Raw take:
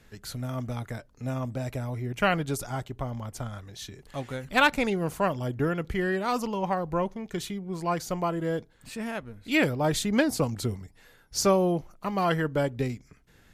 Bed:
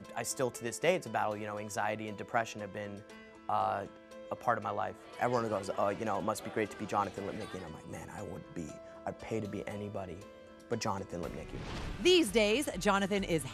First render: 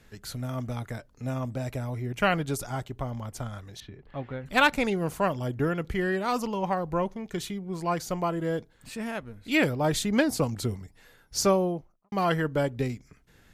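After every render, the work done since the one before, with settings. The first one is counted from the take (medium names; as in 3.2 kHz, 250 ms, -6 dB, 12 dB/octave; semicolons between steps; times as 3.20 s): 3.80–4.46 s: distance through air 400 m; 11.42–12.12 s: studio fade out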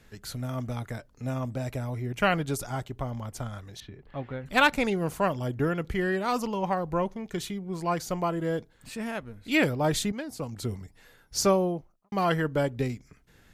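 10.12–10.78 s: fade in quadratic, from -13.5 dB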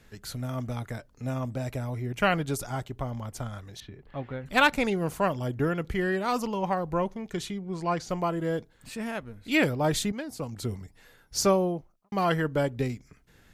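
7.32–8.08 s: low-pass 11 kHz -> 5.8 kHz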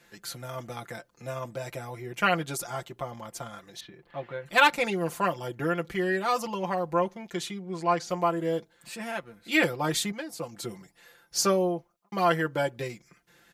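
high-pass 400 Hz 6 dB/octave; comb 5.8 ms, depth 79%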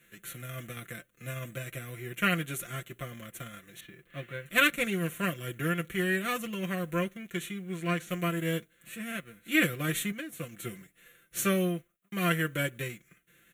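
formants flattened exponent 0.6; static phaser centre 2.1 kHz, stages 4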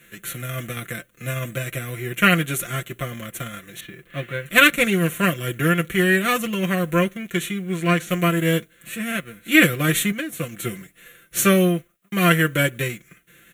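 trim +11 dB; peak limiter -1 dBFS, peak gain reduction 2 dB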